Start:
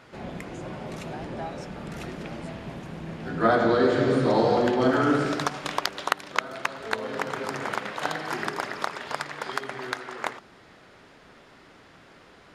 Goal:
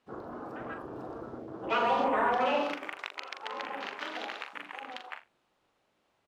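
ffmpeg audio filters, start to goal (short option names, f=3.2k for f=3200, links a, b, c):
-af "asoftclip=type=tanh:threshold=-13.5dB,afwtdn=0.0251,aecho=1:1:83|166|249:0.398|0.0876|0.0193,asetrate=88200,aresample=44100,highshelf=f=2.4k:g=-9.5,volume=-4dB"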